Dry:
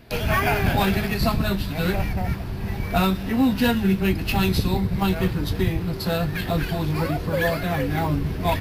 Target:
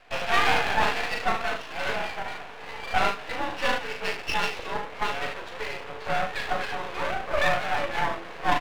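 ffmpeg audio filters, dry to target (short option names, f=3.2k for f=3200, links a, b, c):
-af "aecho=1:1:39|75:0.562|0.376,highpass=f=490:t=q:w=0.5412,highpass=f=490:t=q:w=1.307,lowpass=f=2.9k:t=q:w=0.5176,lowpass=f=2.9k:t=q:w=0.7071,lowpass=f=2.9k:t=q:w=1.932,afreqshift=56,aeval=exprs='max(val(0),0)':c=same,volume=4dB"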